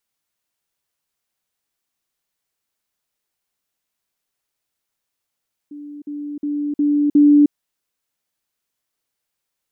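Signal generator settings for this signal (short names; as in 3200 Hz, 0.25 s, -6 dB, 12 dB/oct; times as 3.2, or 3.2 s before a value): level ladder 292 Hz -31.5 dBFS, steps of 6 dB, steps 5, 0.31 s 0.05 s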